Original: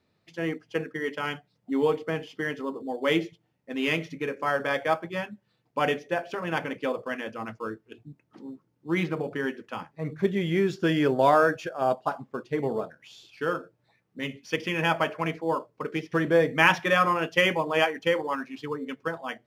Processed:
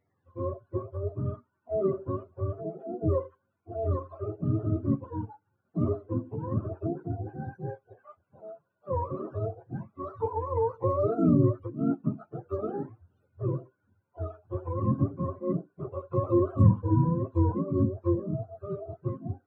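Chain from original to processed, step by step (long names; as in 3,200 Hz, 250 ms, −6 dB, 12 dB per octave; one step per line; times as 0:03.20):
frequency axis turned over on the octave scale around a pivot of 420 Hz
level −2 dB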